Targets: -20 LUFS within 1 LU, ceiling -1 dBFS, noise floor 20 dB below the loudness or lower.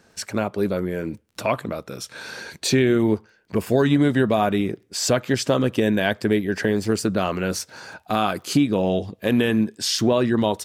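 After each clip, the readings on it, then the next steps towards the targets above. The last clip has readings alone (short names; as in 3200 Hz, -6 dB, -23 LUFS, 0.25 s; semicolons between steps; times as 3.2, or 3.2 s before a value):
ticks 23/s; loudness -22.0 LUFS; peak -7.0 dBFS; loudness target -20.0 LUFS
-> de-click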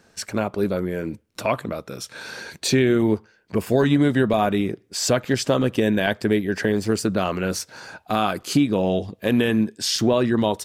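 ticks 0.094/s; loudness -22.0 LUFS; peak -7.0 dBFS; loudness target -20.0 LUFS
-> gain +2 dB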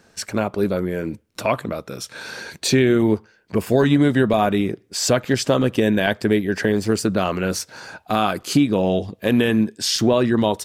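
loudness -20.0 LUFS; peak -5.0 dBFS; noise floor -58 dBFS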